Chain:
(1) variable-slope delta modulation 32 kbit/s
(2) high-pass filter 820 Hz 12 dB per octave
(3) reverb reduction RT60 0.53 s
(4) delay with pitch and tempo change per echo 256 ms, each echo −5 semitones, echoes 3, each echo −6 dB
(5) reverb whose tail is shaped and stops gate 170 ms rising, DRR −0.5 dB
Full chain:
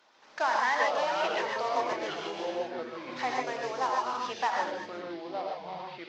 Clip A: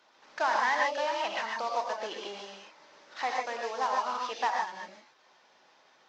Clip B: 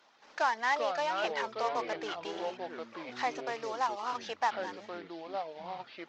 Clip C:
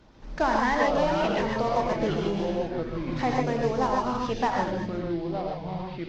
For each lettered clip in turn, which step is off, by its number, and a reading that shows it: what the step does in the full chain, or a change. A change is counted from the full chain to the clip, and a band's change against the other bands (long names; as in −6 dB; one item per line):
4, 250 Hz band −7.5 dB
5, change in integrated loudness −3.5 LU
2, 125 Hz band +21.0 dB